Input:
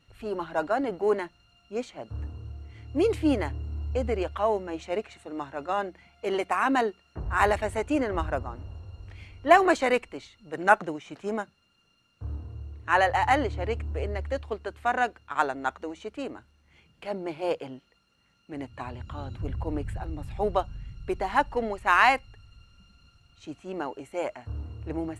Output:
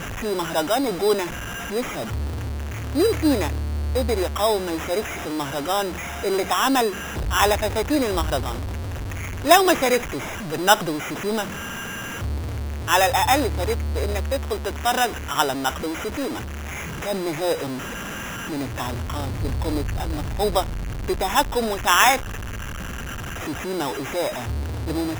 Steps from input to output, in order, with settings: zero-crossing step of -28.5 dBFS; sample-and-hold 10×; gain +3 dB

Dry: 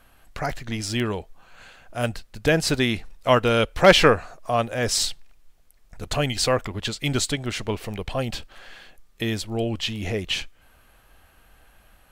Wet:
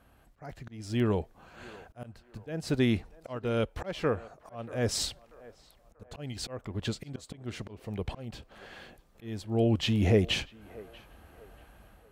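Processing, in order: HPF 50 Hz 12 dB/oct; tilt shelf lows +5.5 dB; AGC gain up to 6 dB; auto swell 0.693 s; on a send: narrowing echo 0.637 s, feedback 49%, band-pass 830 Hz, level -17.5 dB; on the sum: gain -5.5 dB

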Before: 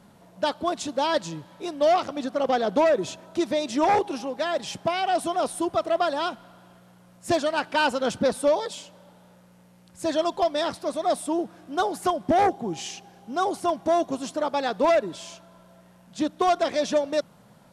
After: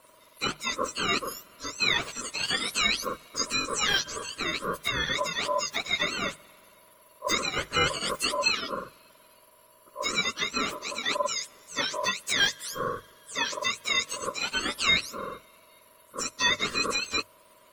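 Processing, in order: spectrum mirrored in octaves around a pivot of 1400 Hz; ring modulator 800 Hz; notches 50/100/150 Hz; gain +3 dB

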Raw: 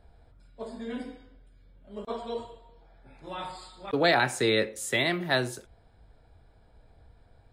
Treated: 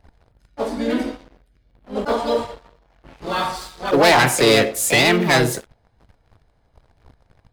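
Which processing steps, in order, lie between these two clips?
sample leveller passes 3; harmoniser +4 st -4 dB; gain +2 dB

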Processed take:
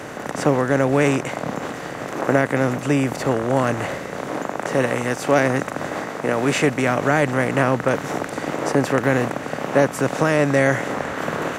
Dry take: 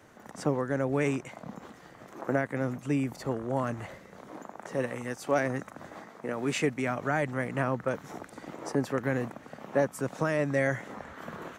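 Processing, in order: per-bin compression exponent 0.6; gain +7.5 dB

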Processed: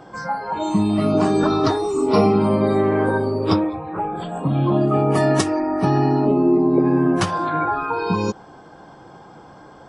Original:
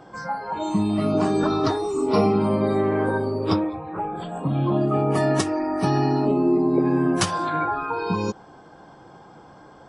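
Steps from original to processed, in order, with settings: 5.6–7.67 high shelf 3500 Hz -11 dB; gain +3.5 dB

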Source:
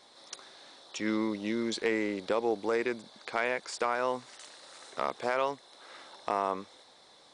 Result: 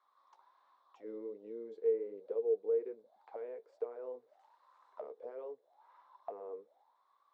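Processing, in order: flange 1.3 Hz, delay 7.9 ms, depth 5.4 ms, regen -48%; auto-wah 450–1200 Hz, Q 14, down, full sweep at -35 dBFS; gain +5 dB

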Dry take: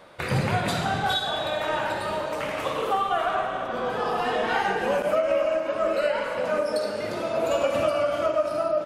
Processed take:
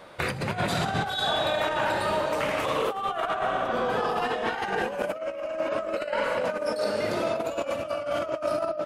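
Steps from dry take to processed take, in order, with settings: negative-ratio compressor -27 dBFS, ratio -0.5

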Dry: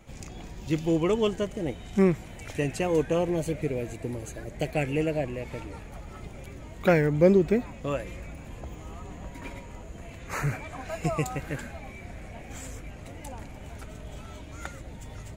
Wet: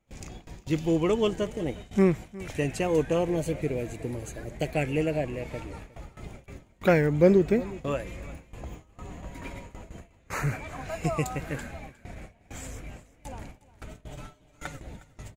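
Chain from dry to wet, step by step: gate with hold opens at -31 dBFS; 14.1–14.77 comb 6.8 ms, depth 63%; on a send: echo 0.359 s -19.5 dB

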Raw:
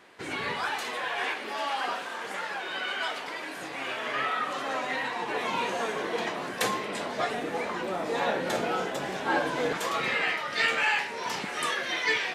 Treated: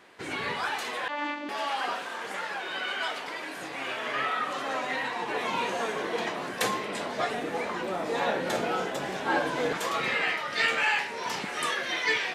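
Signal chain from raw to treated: 1.08–1.49 vocoder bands 16, saw 293 Hz

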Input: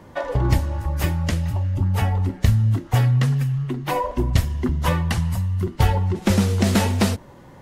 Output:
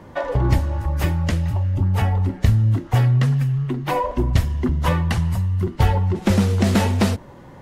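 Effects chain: high shelf 4200 Hz -5.5 dB; in parallel at -8 dB: soft clip -23.5 dBFS, distortion -7 dB

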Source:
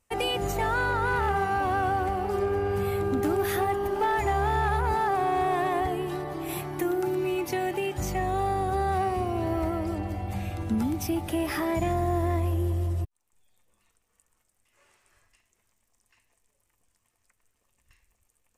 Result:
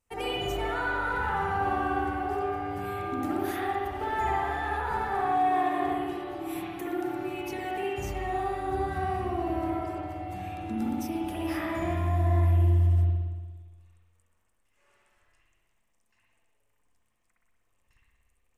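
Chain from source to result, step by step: 5.03–5.91 HPF 110 Hz 12 dB/oct; spring tank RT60 1.4 s, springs 58 ms, chirp 75 ms, DRR -5.5 dB; gain -8.5 dB

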